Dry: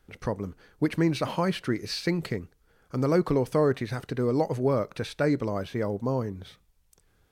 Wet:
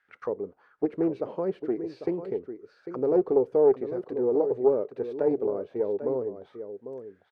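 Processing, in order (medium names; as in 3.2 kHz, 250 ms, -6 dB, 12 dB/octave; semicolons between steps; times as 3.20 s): auto-wah 420–1800 Hz, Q 4.2, down, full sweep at -27.5 dBFS; delay 798 ms -10.5 dB; loudspeaker Doppler distortion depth 0.17 ms; trim +6.5 dB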